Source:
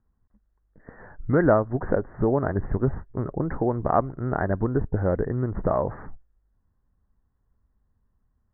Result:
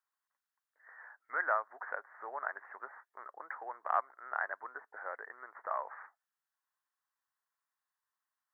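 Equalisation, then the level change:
Bessel high-pass filter 1,500 Hz, order 4
+1.0 dB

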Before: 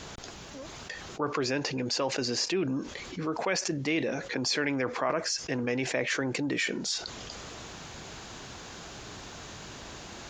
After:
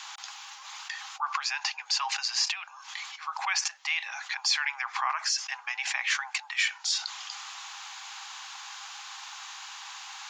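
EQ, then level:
Chebyshev high-pass with heavy ripple 780 Hz, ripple 3 dB
+5.0 dB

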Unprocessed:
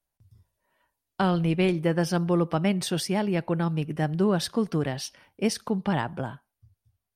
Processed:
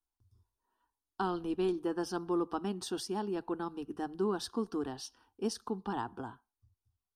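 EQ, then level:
high-shelf EQ 10,000 Hz −11.5 dB
phaser with its sweep stopped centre 580 Hz, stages 6
−5.0 dB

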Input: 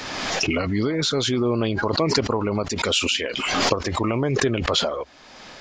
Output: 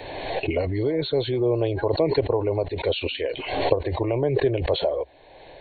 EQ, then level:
linear-phase brick-wall low-pass 4,400 Hz
parametric band 3,400 Hz −11 dB 1.3 octaves
phaser with its sweep stopped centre 530 Hz, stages 4
+3.5 dB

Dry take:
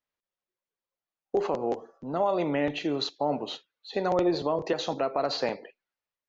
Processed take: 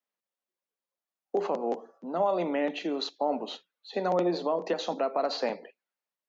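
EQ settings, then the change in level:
Chebyshev high-pass with heavy ripple 170 Hz, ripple 3 dB
0.0 dB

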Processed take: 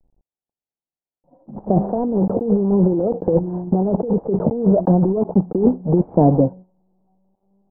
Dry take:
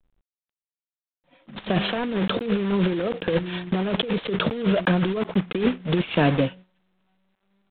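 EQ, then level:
elliptic low-pass filter 840 Hz, stop band 70 dB
+7.0 dB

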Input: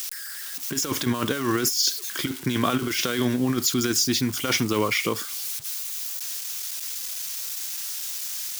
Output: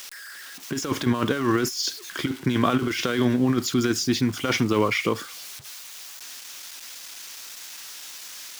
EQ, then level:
low-pass filter 2,400 Hz 6 dB per octave
+2.5 dB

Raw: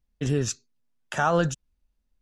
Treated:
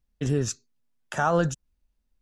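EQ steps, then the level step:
dynamic equaliser 3,000 Hz, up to −5 dB, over −45 dBFS, Q 1
0.0 dB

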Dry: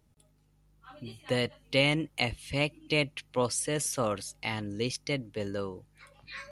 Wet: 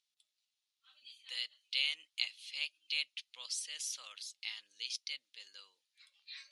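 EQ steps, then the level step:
four-pole ladder band-pass 4,400 Hz, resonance 40%
+7.5 dB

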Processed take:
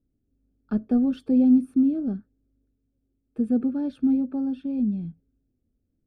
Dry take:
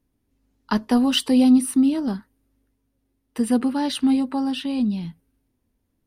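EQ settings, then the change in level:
moving average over 45 samples
−1.5 dB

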